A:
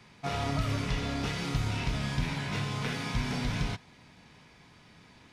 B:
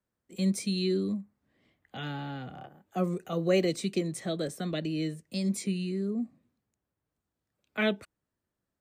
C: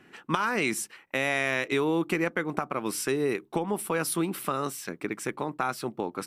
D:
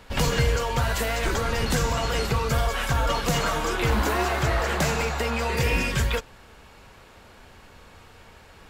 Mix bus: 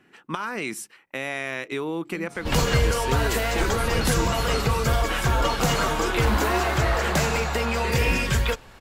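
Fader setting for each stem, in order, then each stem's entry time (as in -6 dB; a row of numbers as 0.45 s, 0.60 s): -15.0 dB, -14.0 dB, -3.0 dB, +1.5 dB; 2.05 s, 1.75 s, 0.00 s, 2.35 s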